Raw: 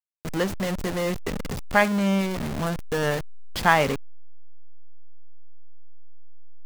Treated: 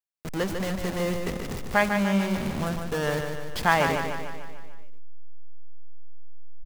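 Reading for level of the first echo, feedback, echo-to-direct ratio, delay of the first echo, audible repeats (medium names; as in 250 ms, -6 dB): -6.0 dB, 56%, -4.5 dB, 148 ms, 6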